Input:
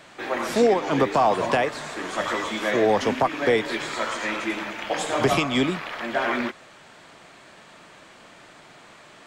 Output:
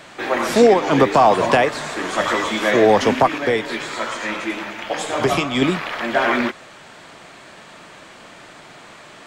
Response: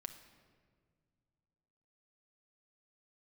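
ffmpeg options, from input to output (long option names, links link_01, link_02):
-filter_complex "[0:a]asettb=1/sr,asplit=3[link_01][link_02][link_03];[link_01]atrim=end=3.384[link_04];[link_02]atrim=start=3.38:end=5.62,asetpts=PTS-STARTPTS,afade=type=in:duration=0.004:curve=qsin,afade=type=out:start_time=2.236:duration=0.004:curve=qsin,flanger=delay=7:depth=6.1:regen=72:speed=1.3:shape=triangular[link_05];[link_03]atrim=start=5.616[link_06];[link_04][link_05]acrossfade=duration=0.004:curve1=hsin:curve2=qsin[link_07];[link_07][link_06]acrossfade=duration=0.004:curve1=qsin:curve2=hsin,volume=6.5dB"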